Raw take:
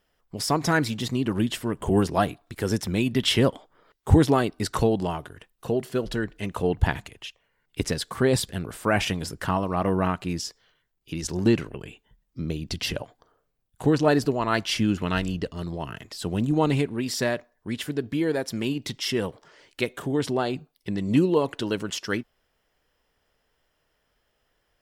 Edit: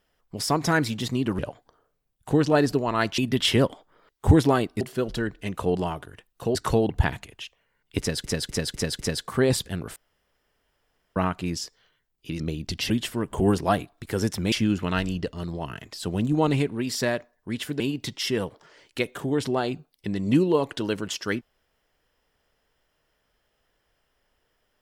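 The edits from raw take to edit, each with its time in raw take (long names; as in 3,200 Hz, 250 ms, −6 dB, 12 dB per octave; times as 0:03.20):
0:01.39–0:03.01: swap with 0:12.92–0:14.71
0:04.64–0:04.98: swap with 0:05.78–0:06.72
0:07.82–0:08.07: repeat, 5 plays
0:08.79–0:09.99: fill with room tone
0:11.23–0:12.42: remove
0:17.99–0:18.62: remove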